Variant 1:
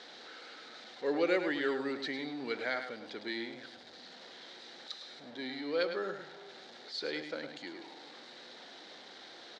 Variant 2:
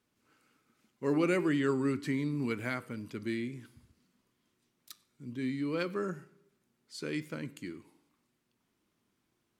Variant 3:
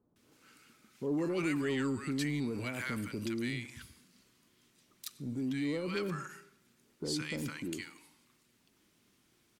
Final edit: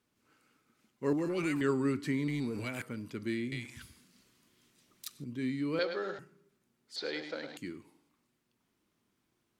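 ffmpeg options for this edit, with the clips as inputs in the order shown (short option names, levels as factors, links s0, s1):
-filter_complex "[2:a]asplit=3[s0][s1][s2];[0:a]asplit=2[s3][s4];[1:a]asplit=6[s5][s6][s7][s8][s9][s10];[s5]atrim=end=1.132[s11];[s0]atrim=start=1.128:end=1.612[s12];[s6]atrim=start=1.608:end=2.282[s13];[s1]atrim=start=2.278:end=2.822[s14];[s7]atrim=start=2.818:end=3.522[s15];[s2]atrim=start=3.518:end=5.242[s16];[s8]atrim=start=5.238:end=5.792[s17];[s3]atrim=start=5.788:end=6.192[s18];[s9]atrim=start=6.188:end=6.962[s19];[s4]atrim=start=6.958:end=7.572[s20];[s10]atrim=start=7.568[s21];[s11][s12]acrossfade=d=0.004:c1=hsin:c2=hsin[s22];[s22][s13]acrossfade=d=0.004:c1=hsin:c2=hsin[s23];[s23][s14]acrossfade=d=0.004:c1=hsin:c2=hsin[s24];[s24][s15]acrossfade=d=0.004:c1=hsin:c2=hsin[s25];[s25][s16]acrossfade=d=0.004:c1=hsin:c2=hsin[s26];[s26][s17]acrossfade=d=0.004:c1=hsin:c2=hsin[s27];[s27][s18]acrossfade=d=0.004:c1=hsin:c2=hsin[s28];[s28][s19]acrossfade=d=0.004:c1=hsin:c2=hsin[s29];[s29][s20]acrossfade=d=0.004:c1=hsin:c2=hsin[s30];[s30][s21]acrossfade=d=0.004:c1=hsin:c2=hsin"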